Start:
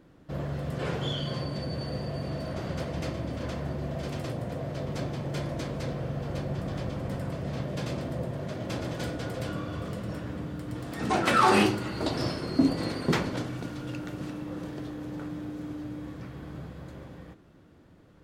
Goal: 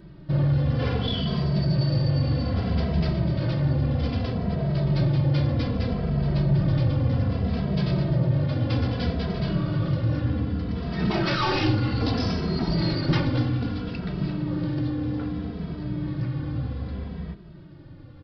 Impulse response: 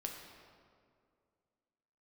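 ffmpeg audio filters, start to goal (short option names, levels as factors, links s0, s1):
-filter_complex "[0:a]aresample=11025,asoftclip=type=tanh:threshold=0.0398,aresample=44100,bass=f=250:g=10,treble=f=4000:g=7,asplit=2[s0][s1];[s1]adelay=2.7,afreqshift=-0.63[s2];[s0][s2]amix=inputs=2:normalize=1,volume=2.37"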